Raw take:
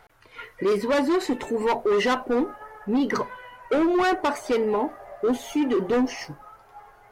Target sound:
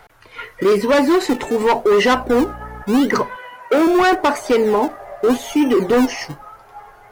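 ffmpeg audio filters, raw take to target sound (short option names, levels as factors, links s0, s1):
-filter_complex "[0:a]asettb=1/sr,asplit=3[s0][s1][s2];[s0]atrim=end=3.364[s3];[s1]atrim=start=3.36:end=3.87,asetpts=PTS-STARTPTS,afade=t=in:d=0.004:c=qsin,afade=t=out:st=0.506:d=0.004:c=qsin,highpass=190[s4];[s2]atrim=start=3.866[s5];[s3][s4]acrossfade=d=0.004:c1=hsin:c2=qsin[s6];[s6][s5]acrossfade=d=0.004:c1=qsin:c2=hsin,acrossover=split=240[s7][s8];[s7]acrusher=samples=30:mix=1:aa=0.000001:lfo=1:lforange=30:lforate=0.84[s9];[s9][s8]amix=inputs=2:normalize=0,asettb=1/sr,asplit=3[s10][s11][s12];[s10]atrim=end=2.134[s13];[s11]atrim=start=2.13:end=2.83,asetpts=PTS-STARTPTS,afade=t=in:d=0.004:c=qsin,afade=t=out:st=0.696:d=0.004:c=qsin,aeval=exprs='val(0)+0.00794*(sin(2*PI*60*n/s)+sin(2*PI*2*60*n/s)/2+sin(2*PI*3*60*n/s)/3+sin(2*PI*4*60*n/s)/4+sin(2*PI*5*60*n/s)/5)':c=same[s14];[s12]atrim=start=2.826[s15];[s13][s14]acrossfade=d=0.004:c1=hsin:c2=qsin[s16];[s16][s15]acrossfade=d=0.004:c1=qsin:c2=hsin,volume=2.51"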